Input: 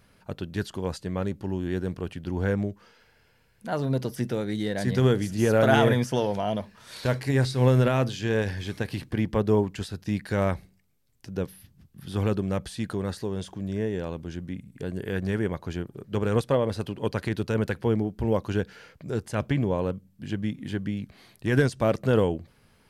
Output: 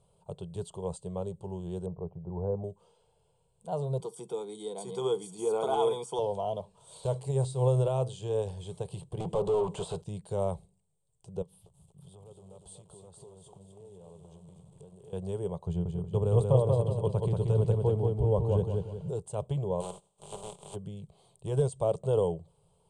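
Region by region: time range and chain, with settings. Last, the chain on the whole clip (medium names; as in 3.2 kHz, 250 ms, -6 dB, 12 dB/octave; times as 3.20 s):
1.86–2.64 s: low-pass 1.1 kHz 24 dB/octave + upward compressor, threshold -34 dBFS
4.00–6.19 s: high-pass 240 Hz 24 dB/octave + comb 0.9 ms, depth 82% + small resonant body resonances 470/1500/2500 Hz, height 7 dB
9.20–10.02 s: compression 1.5:1, threshold -31 dBFS + overdrive pedal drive 31 dB, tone 2.2 kHz, clips at -16 dBFS
11.42–15.13 s: compression 8:1, threshold -42 dBFS + bit-crushed delay 241 ms, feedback 55%, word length 9-bit, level -5 dB
15.67–19.10 s: tone controls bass +9 dB, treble -5 dB + feedback delay 184 ms, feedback 38%, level -3.5 dB
19.80–20.74 s: spectral contrast reduction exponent 0.18 + low-pass 2.1 kHz 6 dB/octave + comb 5 ms, depth 38%
whole clip: de-esser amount 75%; FFT filter 110 Hz 0 dB, 170 Hz +6 dB, 250 Hz -22 dB, 410 Hz +5 dB, 980 Hz +3 dB, 1.8 kHz -27 dB, 3.2 kHz -2 dB, 5.5 kHz -11 dB, 8.6 kHz +12 dB, 14 kHz -29 dB; trim -7.5 dB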